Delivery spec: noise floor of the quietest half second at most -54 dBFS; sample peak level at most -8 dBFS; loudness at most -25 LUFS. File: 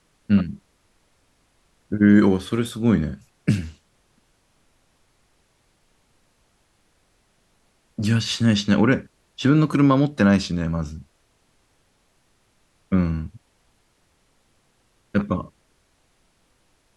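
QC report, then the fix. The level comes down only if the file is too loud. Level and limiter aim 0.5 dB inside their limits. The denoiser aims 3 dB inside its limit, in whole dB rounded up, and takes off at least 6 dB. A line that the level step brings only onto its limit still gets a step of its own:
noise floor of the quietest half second -64 dBFS: pass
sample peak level -3.5 dBFS: fail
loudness -21.0 LUFS: fail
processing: trim -4.5 dB; peak limiter -8.5 dBFS

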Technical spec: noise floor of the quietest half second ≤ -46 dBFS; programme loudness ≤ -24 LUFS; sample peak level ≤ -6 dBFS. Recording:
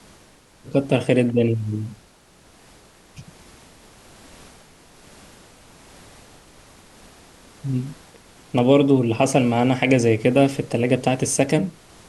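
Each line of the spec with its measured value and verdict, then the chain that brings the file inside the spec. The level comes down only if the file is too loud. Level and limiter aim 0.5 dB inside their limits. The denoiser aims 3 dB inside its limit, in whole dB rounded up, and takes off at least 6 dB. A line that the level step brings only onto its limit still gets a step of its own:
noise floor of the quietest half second -52 dBFS: pass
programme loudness -20.0 LUFS: fail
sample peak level -3.0 dBFS: fail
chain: trim -4.5 dB

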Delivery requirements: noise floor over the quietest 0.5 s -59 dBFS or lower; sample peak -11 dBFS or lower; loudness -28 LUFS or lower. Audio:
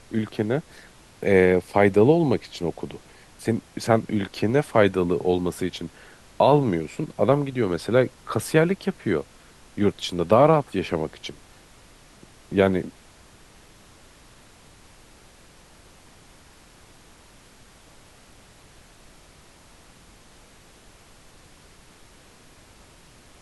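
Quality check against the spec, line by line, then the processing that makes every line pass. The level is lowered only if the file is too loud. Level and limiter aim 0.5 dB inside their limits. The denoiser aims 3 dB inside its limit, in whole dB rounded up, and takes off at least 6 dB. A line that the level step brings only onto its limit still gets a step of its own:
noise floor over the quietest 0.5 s -51 dBFS: fail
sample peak -4.5 dBFS: fail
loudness -22.5 LUFS: fail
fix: noise reduction 6 dB, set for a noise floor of -51 dBFS; trim -6 dB; peak limiter -11.5 dBFS

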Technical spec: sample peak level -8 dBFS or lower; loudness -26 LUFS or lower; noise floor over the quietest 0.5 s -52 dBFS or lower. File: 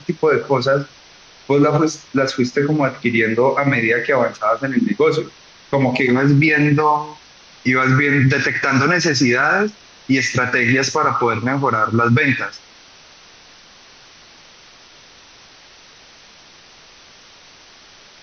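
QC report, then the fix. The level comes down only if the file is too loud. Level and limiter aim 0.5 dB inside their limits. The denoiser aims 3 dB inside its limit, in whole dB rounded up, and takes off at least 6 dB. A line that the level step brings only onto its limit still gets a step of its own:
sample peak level -5.5 dBFS: fail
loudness -16.5 LUFS: fail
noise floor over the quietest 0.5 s -45 dBFS: fail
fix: trim -10 dB

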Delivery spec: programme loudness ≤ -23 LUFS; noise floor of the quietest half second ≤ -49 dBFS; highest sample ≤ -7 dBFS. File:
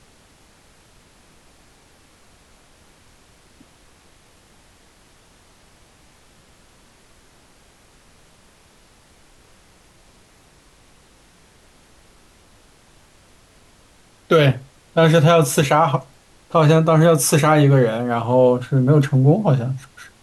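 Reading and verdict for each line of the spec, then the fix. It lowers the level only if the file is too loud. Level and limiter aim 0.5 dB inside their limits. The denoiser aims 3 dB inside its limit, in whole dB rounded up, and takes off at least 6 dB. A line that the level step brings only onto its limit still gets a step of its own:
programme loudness -16.0 LUFS: fail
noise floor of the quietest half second -52 dBFS: pass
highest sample -4.5 dBFS: fail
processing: trim -7.5 dB

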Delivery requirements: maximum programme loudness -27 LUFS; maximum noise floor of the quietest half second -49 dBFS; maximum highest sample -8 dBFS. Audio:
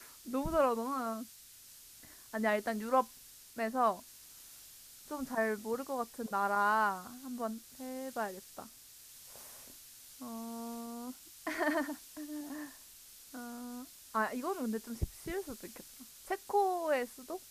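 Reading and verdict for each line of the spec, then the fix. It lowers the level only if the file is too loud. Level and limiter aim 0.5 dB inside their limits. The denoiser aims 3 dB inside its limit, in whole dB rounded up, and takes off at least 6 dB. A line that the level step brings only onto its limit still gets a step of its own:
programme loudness -36.0 LUFS: pass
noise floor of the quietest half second -56 dBFS: pass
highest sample -17.0 dBFS: pass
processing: none needed

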